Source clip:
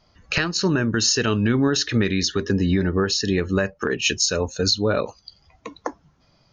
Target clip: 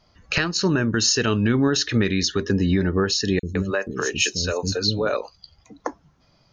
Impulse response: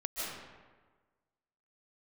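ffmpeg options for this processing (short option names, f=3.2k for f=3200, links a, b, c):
-filter_complex "[0:a]asettb=1/sr,asplit=3[a][b][c];[a]atrim=end=3.394[d];[b]atrim=start=3.39:end=5.8,asetpts=PTS-STARTPTS,afade=t=in:d=0.004:c=qsin,afade=t=out:st=2.406:d=0.004:c=qsin,acrossover=split=320|5600[e][f][g];[e]adelay=40[h];[f]adelay=160[i];[h][i][g]amix=inputs=3:normalize=0,atrim=end_sample=106281[j];[c]atrim=start=5.796[k];[d][j]acrossfade=d=0.004:c1=hsin:c2=qsin[l];[l][k]acrossfade=d=0.004:c1=qsin:c2=hsin"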